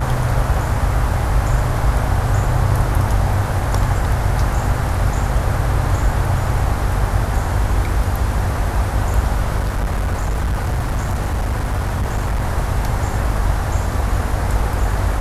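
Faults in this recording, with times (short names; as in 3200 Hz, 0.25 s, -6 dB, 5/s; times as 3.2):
buzz 50 Hz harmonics 32 -22 dBFS
9.59–12.43 clipped -15.5 dBFS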